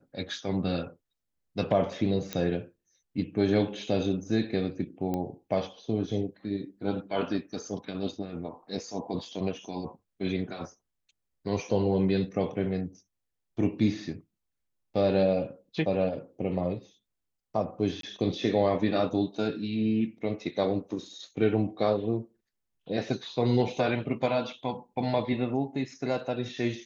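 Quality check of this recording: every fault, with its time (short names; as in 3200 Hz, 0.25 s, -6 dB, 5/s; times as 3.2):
2.33 pop -16 dBFS
5.14 pop -19 dBFS
18.01–18.03 gap 23 ms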